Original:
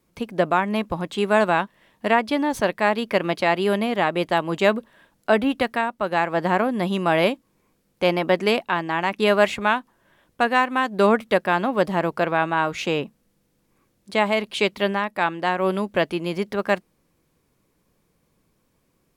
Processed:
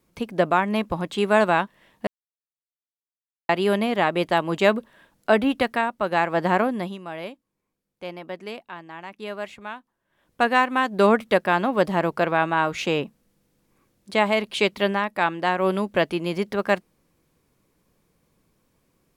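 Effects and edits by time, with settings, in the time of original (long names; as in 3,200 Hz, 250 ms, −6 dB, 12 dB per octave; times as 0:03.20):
0:02.07–0:03.49: silence
0:06.64–0:10.43: duck −15 dB, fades 0.34 s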